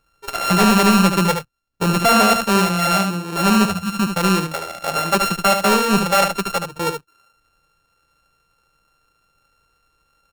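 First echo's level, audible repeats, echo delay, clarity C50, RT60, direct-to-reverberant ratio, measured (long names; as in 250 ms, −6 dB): −6.5 dB, 1, 74 ms, no reverb audible, no reverb audible, no reverb audible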